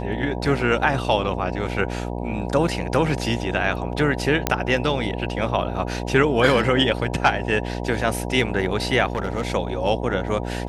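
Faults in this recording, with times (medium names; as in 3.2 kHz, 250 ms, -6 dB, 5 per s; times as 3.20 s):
buzz 60 Hz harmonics 16 -28 dBFS
4.47 s: pop -3 dBFS
9.07–9.55 s: clipped -18.5 dBFS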